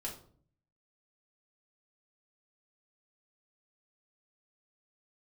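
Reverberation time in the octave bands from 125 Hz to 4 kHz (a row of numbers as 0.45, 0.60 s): 0.90, 0.75, 0.60, 0.45, 0.35, 0.35 s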